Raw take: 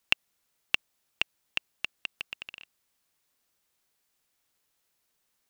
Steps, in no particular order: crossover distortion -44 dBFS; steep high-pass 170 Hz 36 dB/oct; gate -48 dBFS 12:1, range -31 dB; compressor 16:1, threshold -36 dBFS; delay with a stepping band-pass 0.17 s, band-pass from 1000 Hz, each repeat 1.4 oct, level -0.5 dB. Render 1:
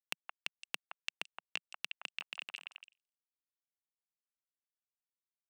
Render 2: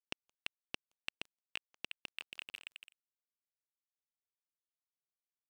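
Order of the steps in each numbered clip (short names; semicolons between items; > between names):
crossover distortion > delay with a stepping band-pass > gate > compressor > steep high-pass; delay with a stepping band-pass > compressor > steep high-pass > gate > crossover distortion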